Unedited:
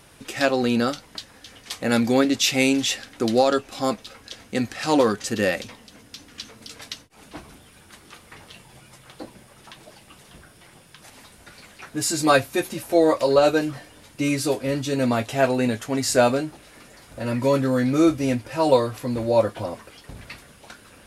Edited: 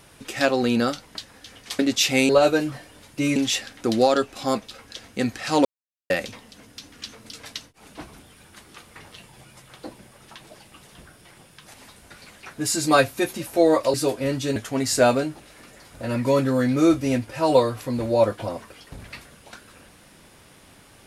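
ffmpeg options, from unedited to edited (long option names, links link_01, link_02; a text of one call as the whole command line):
ffmpeg -i in.wav -filter_complex "[0:a]asplit=8[link_01][link_02][link_03][link_04][link_05][link_06][link_07][link_08];[link_01]atrim=end=1.792[link_09];[link_02]atrim=start=2.218:end=2.722[link_10];[link_03]atrim=start=13.298:end=14.372[link_11];[link_04]atrim=start=2.718:end=5.01,asetpts=PTS-STARTPTS,afade=type=out:start_time=2.288:duration=0.004:curve=hsin[link_12];[link_05]atrim=start=5.01:end=5.46,asetpts=PTS-STARTPTS,volume=0[link_13];[link_06]atrim=start=5.46:end=13.302,asetpts=PTS-STARTPTS,afade=type=in:duration=0.004:curve=hsin[link_14];[link_07]atrim=start=14.368:end=14.992[link_15];[link_08]atrim=start=15.728[link_16];[link_09][link_10]acrossfade=duration=0.004:curve1=hsin:curve2=hsin[link_17];[link_17][link_11]acrossfade=duration=0.004:curve1=hsin:curve2=hsin[link_18];[link_12][link_13][link_14]concat=n=3:v=0:a=1[link_19];[link_18][link_19]acrossfade=duration=0.004:curve1=hsin:curve2=hsin[link_20];[link_20][link_15]acrossfade=duration=0.004:curve1=hsin:curve2=hsin[link_21];[link_21][link_16]acrossfade=duration=0.004:curve1=hsin:curve2=hsin" out.wav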